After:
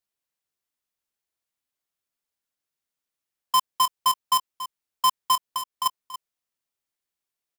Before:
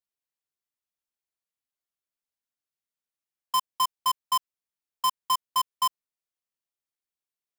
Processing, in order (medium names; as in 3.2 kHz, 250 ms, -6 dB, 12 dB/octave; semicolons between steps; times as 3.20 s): 5.35–5.86 s: compression 4:1, threshold -33 dBFS, peak gain reduction 9 dB; on a send: delay 282 ms -13.5 dB; on the sum: trim +4.5 dB